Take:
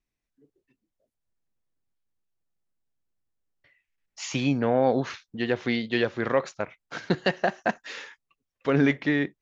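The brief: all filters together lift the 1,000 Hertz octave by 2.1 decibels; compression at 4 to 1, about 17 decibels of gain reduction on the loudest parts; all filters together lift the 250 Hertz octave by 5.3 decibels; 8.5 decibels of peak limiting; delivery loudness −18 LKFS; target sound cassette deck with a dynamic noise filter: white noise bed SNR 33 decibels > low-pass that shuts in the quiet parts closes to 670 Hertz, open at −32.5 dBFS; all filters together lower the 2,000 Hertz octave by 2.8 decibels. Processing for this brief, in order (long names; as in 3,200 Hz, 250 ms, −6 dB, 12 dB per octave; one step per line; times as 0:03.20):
parametric band 250 Hz +6 dB
parametric band 1,000 Hz +3.5 dB
parametric band 2,000 Hz −4.5 dB
downward compressor 4 to 1, threshold −34 dBFS
brickwall limiter −27 dBFS
white noise bed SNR 33 dB
low-pass that shuts in the quiet parts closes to 670 Hz, open at −32.5 dBFS
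level +21.5 dB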